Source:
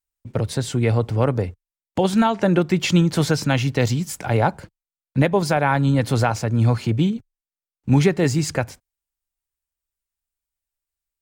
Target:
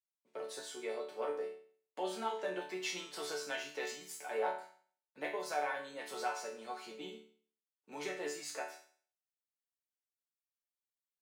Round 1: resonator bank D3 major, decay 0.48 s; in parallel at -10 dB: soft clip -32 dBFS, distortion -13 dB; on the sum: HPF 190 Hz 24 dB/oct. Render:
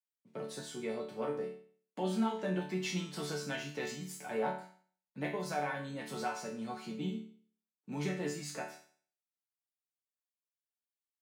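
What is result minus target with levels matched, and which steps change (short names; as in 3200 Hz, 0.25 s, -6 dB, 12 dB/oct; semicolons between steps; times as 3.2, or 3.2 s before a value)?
250 Hz band +9.5 dB
change: HPF 380 Hz 24 dB/oct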